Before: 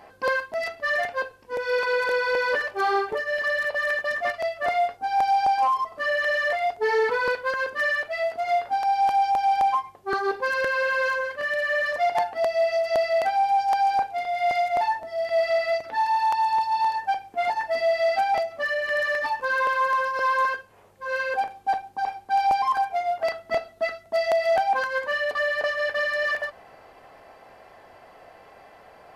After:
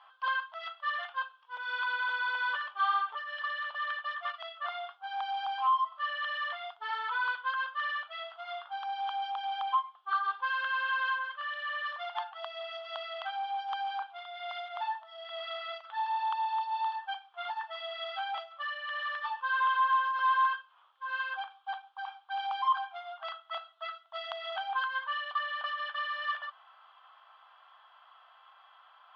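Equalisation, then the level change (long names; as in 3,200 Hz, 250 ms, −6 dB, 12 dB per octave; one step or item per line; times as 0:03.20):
high-pass filter 1,100 Hz 24 dB per octave
transistor ladder low-pass 3,400 Hz, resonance 85%
high shelf with overshoot 1,600 Hz −8 dB, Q 3
+8.0 dB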